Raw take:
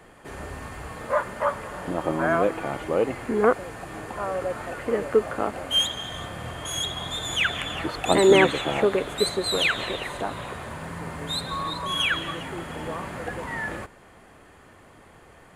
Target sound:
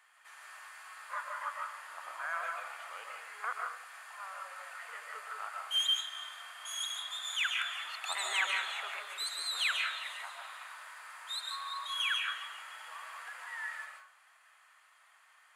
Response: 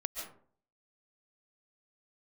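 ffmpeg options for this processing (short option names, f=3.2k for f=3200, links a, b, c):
-filter_complex "[0:a]highpass=f=1.1k:w=0.5412,highpass=f=1.1k:w=1.3066[a];[1:a]atrim=start_sample=2205[b];[a][b]afir=irnorm=-1:irlink=0,volume=-8dB"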